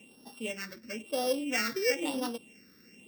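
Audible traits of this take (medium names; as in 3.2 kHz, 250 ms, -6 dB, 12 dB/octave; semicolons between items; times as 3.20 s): a buzz of ramps at a fixed pitch in blocks of 16 samples; phasing stages 6, 1 Hz, lowest notch 760–2200 Hz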